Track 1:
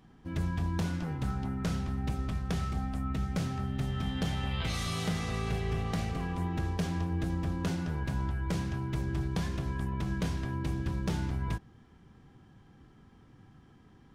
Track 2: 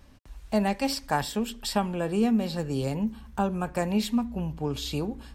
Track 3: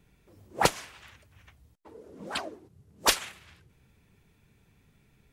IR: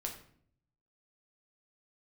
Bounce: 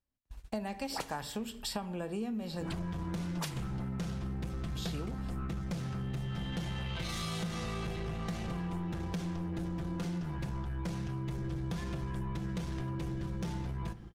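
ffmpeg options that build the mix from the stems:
-filter_complex "[0:a]asoftclip=type=tanh:threshold=0.0316,aecho=1:1:5.8:0.5,adelay=2350,volume=1.26,asplit=2[s0][s1];[s1]volume=0.376[s2];[1:a]volume=0.531,asplit=3[s3][s4][s5];[s3]atrim=end=2.67,asetpts=PTS-STARTPTS,afade=t=out:st=2.666:d=0.004:c=hsin[s6];[s4]atrim=start=2.67:end=4.75,asetpts=PTS-STARTPTS,volume=0[s7];[s5]atrim=start=4.75,asetpts=PTS-STARTPTS,afade=t=in:d=0.004:c=hsin[s8];[s6][s7][s8]concat=n=3:v=0:a=1,asplit=2[s9][s10];[s10]volume=0.447[s11];[2:a]adelay=350,volume=0.335,asplit=2[s12][s13];[s13]volume=0.398[s14];[3:a]atrim=start_sample=2205[s15];[s2][s11][s14]amix=inputs=3:normalize=0[s16];[s16][s15]afir=irnorm=-1:irlink=0[s17];[s0][s9][s12][s17]amix=inputs=4:normalize=0,agate=range=0.0224:threshold=0.00562:ratio=16:detection=peak,acompressor=threshold=0.02:ratio=6"

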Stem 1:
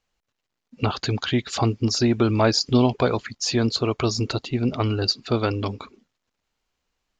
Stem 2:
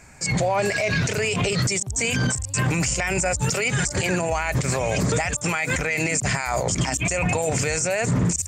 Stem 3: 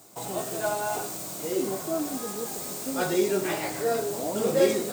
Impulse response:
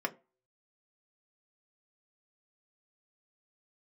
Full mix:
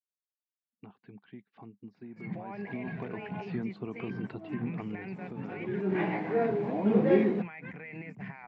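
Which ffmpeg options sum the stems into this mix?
-filter_complex "[0:a]acompressor=threshold=0.0562:ratio=4,volume=0.355,afade=t=in:st=2.4:d=0.77:silence=0.281838,afade=t=out:st=4.78:d=0.29:silence=0.473151,asplit=2[s0][s1];[1:a]adelay=1950,volume=0.133[s2];[2:a]adelay=2500,volume=1.06[s3];[s1]apad=whole_len=327526[s4];[s3][s4]sidechaincompress=threshold=0.00178:ratio=8:attack=8.9:release=168[s5];[s0][s2][s5]amix=inputs=3:normalize=0,agate=range=0.0224:threshold=0.00562:ratio=3:detection=peak,highpass=f=130:w=0.5412,highpass=f=130:w=1.3066,equalizer=f=200:t=q:w=4:g=10,equalizer=f=580:t=q:w=4:g=-9,equalizer=f=1300:t=q:w=4:g=-9,lowpass=f=2200:w=0.5412,lowpass=f=2200:w=1.3066"

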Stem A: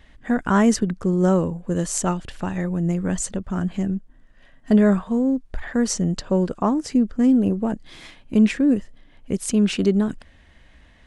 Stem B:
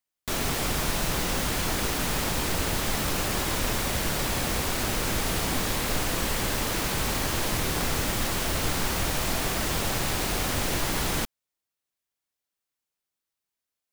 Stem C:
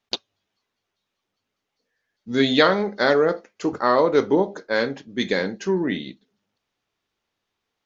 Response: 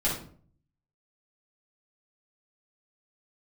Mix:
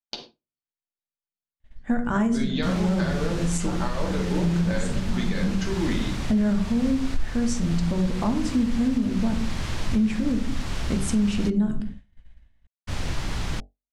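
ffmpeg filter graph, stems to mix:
-filter_complex "[0:a]adelay=1600,volume=0.631,asplit=2[s0][s1];[s1]volume=0.251[s2];[1:a]lowpass=6100,bandreject=f=47.43:t=h:w=4,bandreject=f=94.86:t=h:w=4,bandreject=f=142.29:t=h:w=4,bandreject=f=189.72:t=h:w=4,bandreject=f=237.15:t=h:w=4,bandreject=f=284.58:t=h:w=4,bandreject=f=332.01:t=h:w=4,bandreject=f=379.44:t=h:w=4,bandreject=f=426.87:t=h:w=4,bandreject=f=474.3:t=h:w=4,bandreject=f=521.73:t=h:w=4,bandreject=f=569.16:t=h:w=4,bandreject=f=616.59:t=h:w=4,bandreject=f=664.02:t=h:w=4,bandreject=f=711.45:t=h:w=4,bandreject=f=758.88:t=h:w=4,bandreject=f=806.31:t=h:w=4,adelay=2350,volume=0.562,asplit=3[s3][s4][s5];[s3]atrim=end=11.5,asetpts=PTS-STARTPTS,afade=t=out:st=11.496:d=0.004:c=hsin[s6];[s4]atrim=start=11.5:end=12.87,asetpts=PTS-STARTPTS,volume=0[s7];[s5]atrim=start=12.87,asetpts=PTS-STARTPTS,afade=t=in:d=0.004:c=hsin[s8];[s6][s7][s8]concat=n=3:v=0:a=1[s9];[2:a]acompressor=threshold=0.0447:ratio=10,volume=1.06,asplit=3[s10][s11][s12];[s11]volume=0.335[s13];[s12]apad=whole_len=558610[s14];[s0][s14]sidechaincompress=threshold=0.00708:ratio=8:attack=16:release=237[s15];[3:a]atrim=start_sample=2205[s16];[s2][s13]amix=inputs=2:normalize=0[s17];[s17][s16]afir=irnorm=-1:irlink=0[s18];[s15][s9][s10][s18]amix=inputs=4:normalize=0,agate=range=0.0224:threshold=0.02:ratio=3:detection=peak,asubboost=boost=2.5:cutoff=210,alimiter=limit=0.188:level=0:latency=1:release=314"

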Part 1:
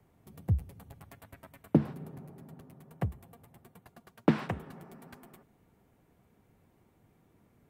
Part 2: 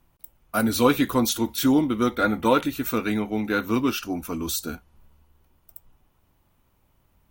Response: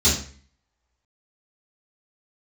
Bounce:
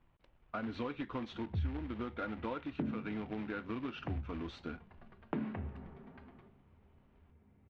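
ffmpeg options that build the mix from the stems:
-filter_complex "[0:a]adelay=1050,volume=0.562,asplit=2[s0][s1];[s1]volume=0.075[s2];[1:a]acompressor=threshold=0.0282:ratio=2,acrusher=bits=2:mode=log:mix=0:aa=0.000001,volume=0.501[s3];[2:a]atrim=start_sample=2205[s4];[s2][s4]afir=irnorm=-1:irlink=0[s5];[s0][s3][s5]amix=inputs=3:normalize=0,lowpass=f=3000:w=0.5412,lowpass=f=3000:w=1.3066,acompressor=threshold=0.0126:ratio=2.5"

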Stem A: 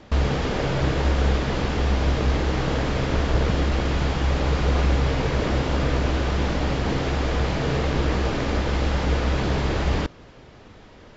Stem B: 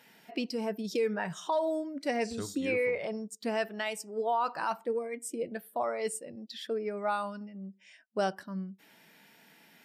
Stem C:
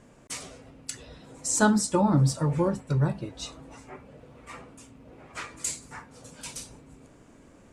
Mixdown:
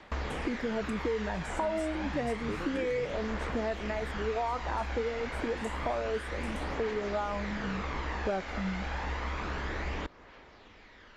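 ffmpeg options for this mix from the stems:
-filter_complex "[0:a]equalizer=f=125:t=o:w=1:g=-10,equalizer=f=1000:t=o:w=1:g=6,equalizer=f=2000:t=o:w=1:g=9,equalizer=f=4000:t=o:w=1:g=5,aphaser=in_gain=1:out_gain=1:delay=1.5:decay=0.33:speed=0.29:type=triangular,volume=0.266[s0];[1:a]afwtdn=0.0141,equalizer=f=330:w=0.33:g=11,adelay=100,volume=1[s1];[2:a]volume=0.237[s2];[s0][s1][s2]amix=inputs=3:normalize=0,acrossover=split=1300|2700|6500[s3][s4][s5][s6];[s3]acompressor=threshold=0.0251:ratio=4[s7];[s4]acompressor=threshold=0.00708:ratio=4[s8];[s5]acompressor=threshold=0.00112:ratio=4[s9];[s6]acompressor=threshold=0.00178:ratio=4[s10];[s7][s8][s9][s10]amix=inputs=4:normalize=0"

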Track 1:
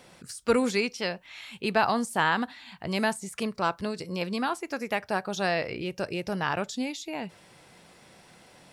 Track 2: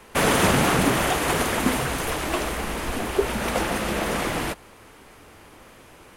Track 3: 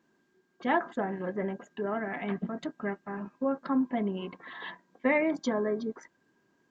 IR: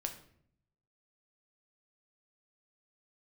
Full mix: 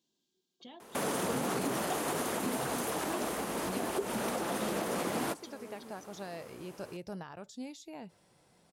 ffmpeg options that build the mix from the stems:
-filter_complex "[0:a]alimiter=limit=0.0944:level=0:latency=1:release=347,adelay=800,volume=0.316[s0];[1:a]alimiter=limit=0.112:level=0:latency=1:release=186,highpass=180,adelay=800,volume=0.75[s1];[2:a]highshelf=f=2300:t=q:w=3:g=13.5,acompressor=threshold=0.0224:ratio=6,volume=0.211[s2];[s0][s1][s2]amix=inputs=3:normalize=0,equalizer=f=2300:w=0.82:g=-7.5"

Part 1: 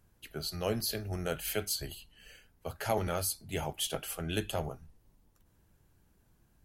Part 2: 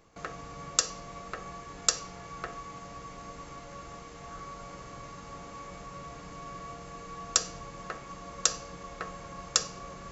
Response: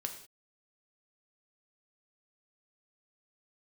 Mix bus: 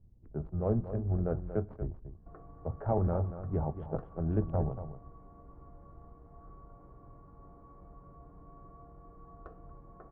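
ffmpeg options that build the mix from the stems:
-filter_complex "[0:a]adynamicsmooth=sensitivity=6.5:basefreq=510,volume=0.75,asplit=3[s0][s1][s2];[s1]volume=0.158[s3];[s2]volume=0.316[s4];[1:a]aecho=1:1:2.8:0.37,adelay=2100,volume=0.211,asplit=2[s5][s6];[s6]volume=0.119[s7];[2:a]atrim=start_sample=2205[s8];[s3][s8]afir=irnorm=-1:irlink=0[s9];[s4][s7]amix=inputs=2:normalize=0,aecho=0:1:234:1[s10];[s0][s5][s9][s10]amix=inputs=4:normalize=0,lowpass=f=1100:w=0.5412,lowpass=f=1100:w=1.3066,lowshelf=f=240:g=10.5"

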